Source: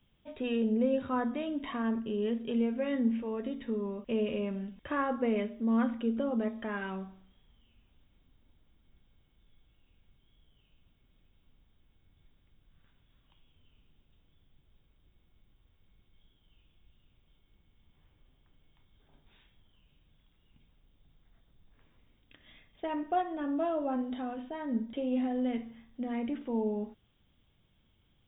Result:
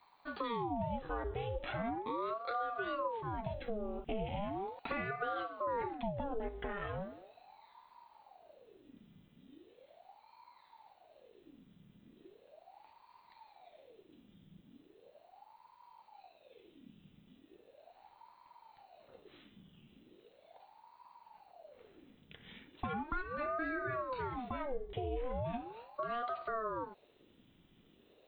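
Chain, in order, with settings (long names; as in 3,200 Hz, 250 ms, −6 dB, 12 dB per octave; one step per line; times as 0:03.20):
downward compressor 4 to 1, threshold −40 dBFS, peak gain reduction 14 dB
ring modulator whose carrier an LFO sweeps 570 Hz, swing 70%, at 0.38 Hz
level +6 dB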